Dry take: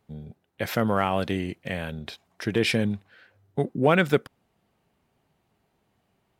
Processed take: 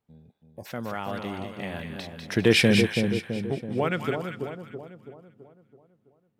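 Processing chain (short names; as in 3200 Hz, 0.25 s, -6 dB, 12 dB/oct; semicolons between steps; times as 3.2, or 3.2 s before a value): Doppler pass-by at 2.57, 15 m/s, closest 5.2 m; spectral gain 0.42–0.66, 1100–4700 Hz -28 dB; split-band echo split 960 Hz, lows 0.33 s, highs 0.197 s, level -5 dB; gain +4.5 dB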